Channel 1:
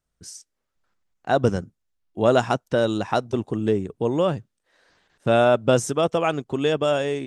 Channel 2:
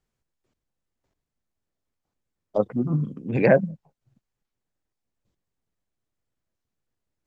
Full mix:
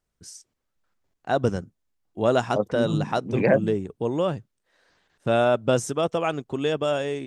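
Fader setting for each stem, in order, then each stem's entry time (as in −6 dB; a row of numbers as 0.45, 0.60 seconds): −3.0, −2.5 decibels; 0.00, 0.00 seconds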